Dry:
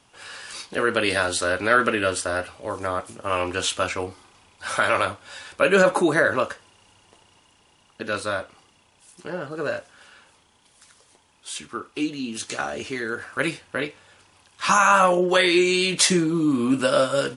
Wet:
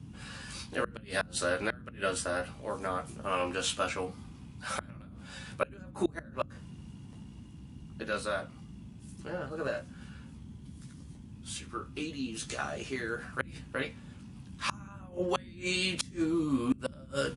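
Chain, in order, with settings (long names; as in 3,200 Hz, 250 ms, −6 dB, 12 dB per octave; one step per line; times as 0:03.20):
double-tracking delay 15 ms −5 dB
gate with flip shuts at −8 dBFS, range −31 dB
noise in a band 49–240 Hz −39 dBFS
level −8.5 dB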